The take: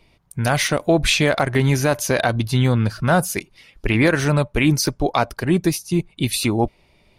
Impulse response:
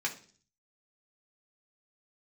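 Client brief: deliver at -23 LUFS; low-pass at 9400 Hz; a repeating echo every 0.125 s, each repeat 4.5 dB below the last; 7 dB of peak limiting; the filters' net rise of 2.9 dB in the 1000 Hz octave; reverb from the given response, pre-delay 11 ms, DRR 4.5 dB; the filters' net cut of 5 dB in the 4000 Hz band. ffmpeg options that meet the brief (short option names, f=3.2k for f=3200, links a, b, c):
-filter_complex "[0:a]lowpass=9.4k,equalizer=f=1k:t=o:g=4.5,equalizer=f=4k:t=o:g=-6.5,alimiter=limit=-9dB:level=0:latency=1,aecho=1:1:125|250|375|500|625|750|875|1000|1125:0.596|0.357|0.214|0.129|0.0772|0.0463|0.0278|0.0167|0.01,asplit=2[a][b];[1:a]atrim=start_sample=2205,adelay=11[c];[b][c]afir=irnorm=-1:irlink=0,volume=-10dB[d];[a][d]amix=inputs=2:normalize=0,volume=-4dB"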